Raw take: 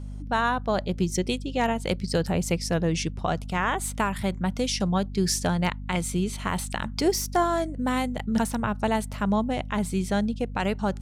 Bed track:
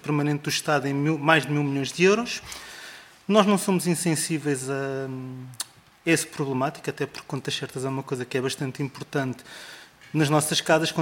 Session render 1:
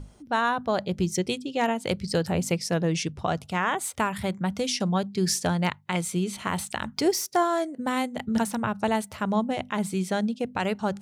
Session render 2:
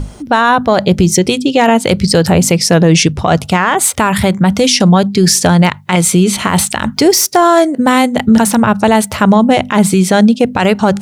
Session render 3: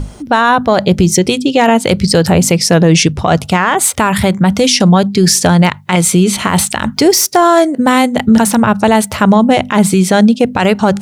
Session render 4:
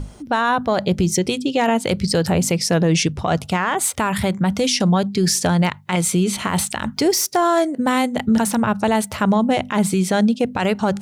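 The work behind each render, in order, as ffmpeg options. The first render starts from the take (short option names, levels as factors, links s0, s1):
-af "bandreject=f=50:t=h:w=6,bandreject=f=100:t=h:w=6,bandreject=f=150:t=h:w=6,bandreject=f=200:t=h:w=6,bandreject=f=250:t=h:w=6"
-af "acontrast=85,alimiter=level_in=4.73:limit=0.891:release=50:level=0:latency=1"
-af anull
-af "volume=0.376"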